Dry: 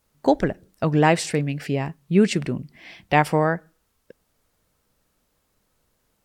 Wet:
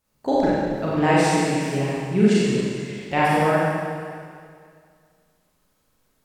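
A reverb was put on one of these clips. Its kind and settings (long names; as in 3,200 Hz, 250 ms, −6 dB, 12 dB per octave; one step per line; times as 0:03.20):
four-comb reverb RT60 2.1 s, combs from 30 ms, DRR −8 dB
level −7 dB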